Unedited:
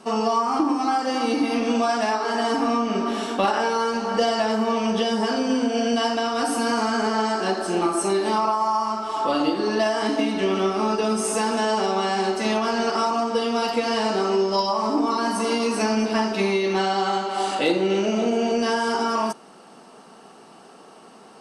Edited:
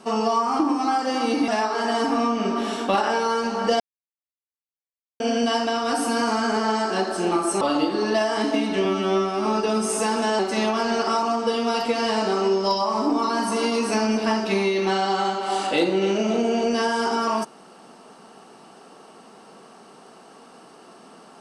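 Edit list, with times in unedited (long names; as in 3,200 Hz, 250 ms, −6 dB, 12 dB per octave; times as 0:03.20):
0:01.48–0:01.98: remove
0:04.30–0:05.70: silence
0:08.11–0:09.26: remove
0:10.50–0:10.80: time-stretch 2×
0:11.74–0:12.27: remove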